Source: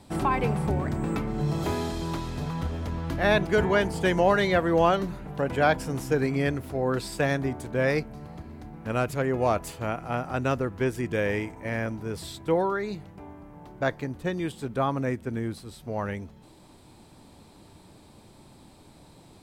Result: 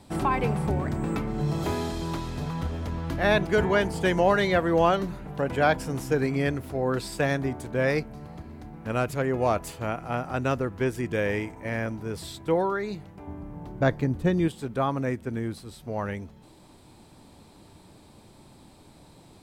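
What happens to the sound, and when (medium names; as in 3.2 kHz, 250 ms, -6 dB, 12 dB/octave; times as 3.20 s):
13.27–14.48 s: bass shelf 370 Hz +10 dB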